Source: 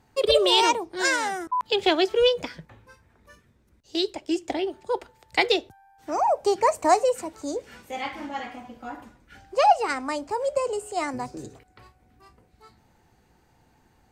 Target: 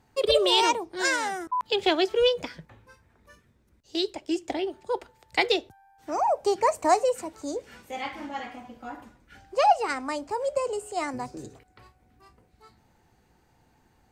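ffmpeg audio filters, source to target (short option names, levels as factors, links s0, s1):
-af "volume=0.794"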